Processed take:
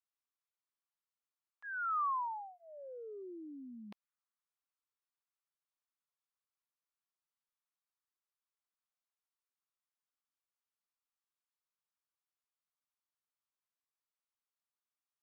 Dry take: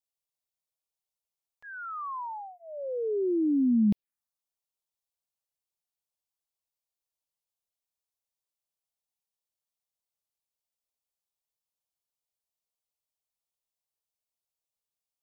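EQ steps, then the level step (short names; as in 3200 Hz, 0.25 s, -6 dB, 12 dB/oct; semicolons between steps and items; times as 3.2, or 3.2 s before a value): band-pass 1200 Hz, Q 2.4; tilt +3.5 dB/oct; +2.0 dB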